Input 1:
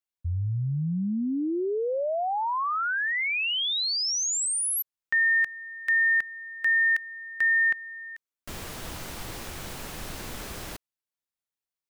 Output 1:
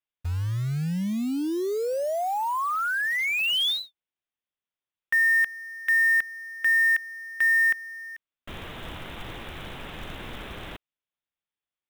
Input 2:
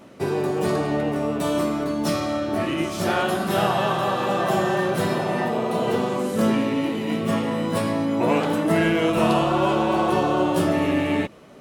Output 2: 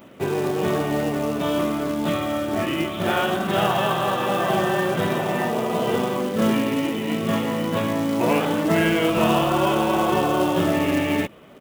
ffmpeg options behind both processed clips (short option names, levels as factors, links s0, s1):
-af "aresample=8000,aresample=44100,aemphasis=mode=production:type=50kf,acrusher=bits=4:mode=log:mix=0:aa=0.000001"